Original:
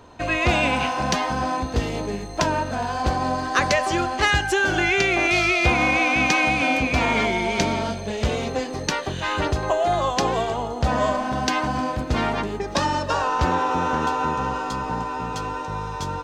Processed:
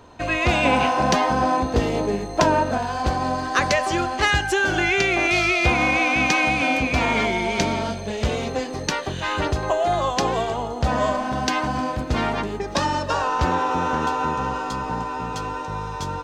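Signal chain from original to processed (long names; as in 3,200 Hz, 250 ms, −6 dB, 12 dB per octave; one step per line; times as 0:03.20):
0:00.65–0:02.78: parametric band 490 Hz +6 dB 2.8 octaves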